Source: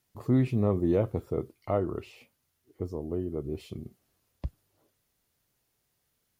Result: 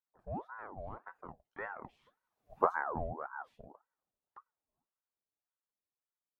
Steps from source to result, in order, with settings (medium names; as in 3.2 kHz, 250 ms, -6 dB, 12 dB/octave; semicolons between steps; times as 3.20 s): Doppler pass-by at 2.59 s, 23 m/s, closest 1.8 m; treble shelf 2.7 kHz -10.5 dB; small resonant body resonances 280/710 Hz, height 12 dB; ring modulator with a swept carrier 780 Hz, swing 60%, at 1.8 Hz; trim +6.5 dB